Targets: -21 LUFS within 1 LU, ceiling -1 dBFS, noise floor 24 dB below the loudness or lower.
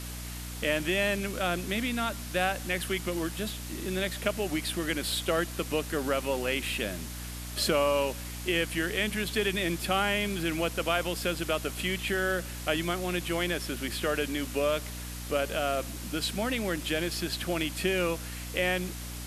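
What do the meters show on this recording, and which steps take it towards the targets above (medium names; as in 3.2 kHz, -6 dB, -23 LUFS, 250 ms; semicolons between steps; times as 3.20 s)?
hum 60 Hz; highest harmonic 300 Hz; hum level -38 dBFS; noise floor -39 dBFS; noise floor target -54 dBFS; loudness -30.0 LUFS; peak level -11.0 dBFS; loudness target -21.0 LUFS
-> hum notches 60/120/180/240/300 Hz; noise reduction 15 dB, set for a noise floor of -39 dBFS; trim +9 dB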